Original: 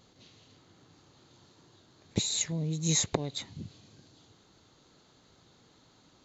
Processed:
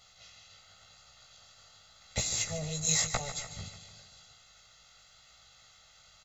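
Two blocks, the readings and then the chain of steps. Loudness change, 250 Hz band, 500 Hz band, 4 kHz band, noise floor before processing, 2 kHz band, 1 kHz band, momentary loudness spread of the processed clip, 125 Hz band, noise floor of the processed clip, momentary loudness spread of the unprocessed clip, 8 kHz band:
-1.0 dB, -9.0 dB, -3.0 dB, -1.0 dB, -63 dBFS, +5.5 dB, +2.5 dB, 19 LU, -5.5 dB, -60 dBFS, 17 LU, no reading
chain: spectral peaks clipped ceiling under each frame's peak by 16 dB; peaking EQ 340 Hz -12 dB 2.5 oct; comb 1.5 ms, depth 92%; dynamic bell 3.6 kHz, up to -8 dB, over -45 dBFS, Q 0.9; in parallel at -11 dB: Schmitt trigger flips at -30 dBFS; on the sum: chorus 0.92 Hz, delay 16 ms, depth 4.7 ms; on a send: feedback delay 148 ms, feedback 56%, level -12 dB; on the sum: trim +4 dB

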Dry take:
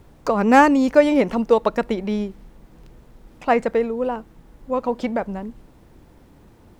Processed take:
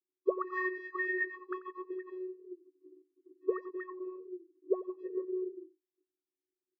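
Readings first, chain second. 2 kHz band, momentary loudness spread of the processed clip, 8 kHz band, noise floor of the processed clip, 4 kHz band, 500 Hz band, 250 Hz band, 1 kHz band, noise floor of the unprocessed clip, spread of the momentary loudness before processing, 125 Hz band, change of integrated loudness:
-10.5 dB, 15 LU, no reading, under -85 dBFS, under -30 dB, -16.5 dB, -21.0 dB, -23.0 dB, -51 dBFS, 16 LU, under -40 dB, -18.0 dB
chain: frequency axis rescaled in octaves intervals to 89%; gate -46 dBFS, range -39 dB; tone controls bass +14 dB, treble +5 dB; vocoder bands 16, square 369 Hz; auto-wah 280–1800 Hz, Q 14, up, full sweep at -12.5 dBFS; on a send: delay 89 ms -18.5 dB; on the sum: trim +7 dB

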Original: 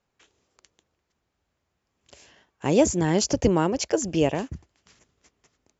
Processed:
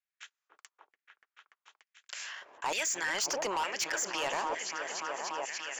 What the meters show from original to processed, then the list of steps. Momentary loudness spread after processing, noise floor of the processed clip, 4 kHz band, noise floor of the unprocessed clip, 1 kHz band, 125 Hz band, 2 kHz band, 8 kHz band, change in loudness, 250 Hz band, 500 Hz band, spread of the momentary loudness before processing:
10 LU, under -85 dBFS, -1.0 dB, -79 dBFS, -2.0 dB, -30.5 dB, +3.5 dB, no reading, -10.0 dB, -23.5 dB, -13.5 dB, 11 LU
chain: gate -56 dBFS, range -57 dB; delay with an opening low-pass 290 ms, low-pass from 400 Hz, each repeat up 1 oct, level -6 dB; LFO high-pass saw down 1.1 Hz 920–2000 Hz; saturation -26 dBFS, distortion -6 dB; short-mantissa float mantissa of 8-bit; level flattener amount 50%; trim -1.5 dB

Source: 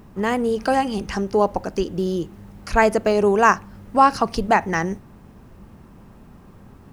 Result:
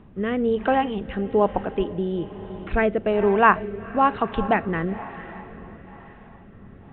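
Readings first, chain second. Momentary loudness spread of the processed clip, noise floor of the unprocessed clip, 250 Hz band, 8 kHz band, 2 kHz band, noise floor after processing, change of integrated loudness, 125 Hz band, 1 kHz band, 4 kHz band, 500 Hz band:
19 LU, -47 dBFS, -1.5 dB, under -40 dB, -2.5 dB, -47 dBFS, -2.5 dB, -1.0 dB, -3.0 dB, -6.0 dB, -2.0 dB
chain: echo that smears into a reverb 461 ms, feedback 54%, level -15 dB; rotary cabinet horn 1.1 Hz; resampled via 8 kHz

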